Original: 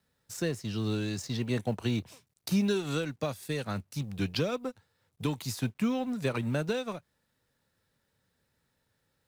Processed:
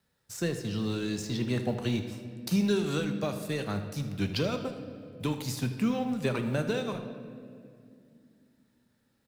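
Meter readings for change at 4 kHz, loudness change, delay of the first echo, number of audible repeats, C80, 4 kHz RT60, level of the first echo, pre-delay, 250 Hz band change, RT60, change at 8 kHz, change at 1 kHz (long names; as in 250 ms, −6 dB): +1.0 dB, +1.0 dB, 78 ms, 1, 10.0 dB, 1.5 s, −15.0 dB, 5 ms, +1.5 dB, 2.4 s, +0.5 dB, +1.0 dB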